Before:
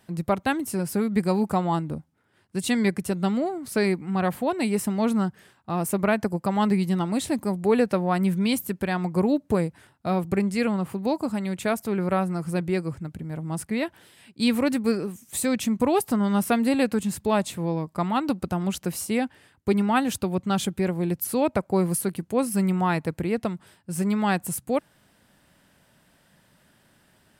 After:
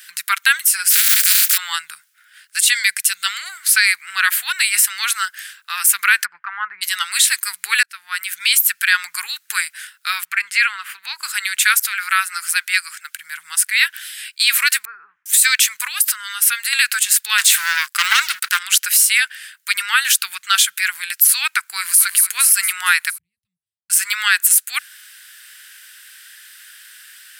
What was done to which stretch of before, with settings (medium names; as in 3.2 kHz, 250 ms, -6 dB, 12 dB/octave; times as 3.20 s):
0.90–1.56 s: spectral contrast reduction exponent 0.21
2.73–3.26 s: peaking EQ 1.2 kHz -6 dB 1.7 oct
6.24–6.81 s: low-pass 2.4 kHz -> 1.1 kHz 24 dB/octave
7.83–9.08 s: fade in equal-power
10.25–11.23 s: tone controls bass -6 dB, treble -13 dB
11.86–13.14 s: high-pass 420 Hz 24 dB/octave
14.85–15.26 s: low-pass 1 kHz 24 dB/octave
15.87–16.73 s: compression, threshold -25 dBFS
17.38–18.59 s: waveshaping leveller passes 3
21.58–22.03 s: echo throw 230 ms, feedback 60%, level -9 dB
23.18–23.90 s: inverse Chebyshev low-pass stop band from 550 Hz, stop band 60 dB
whole clip: elliptic high-pass 1.5 kHz, stop band 60 dB; treble shelf 9.1 kHz +8.5 dB; loudness maximiser +22 dB; trim -1 dB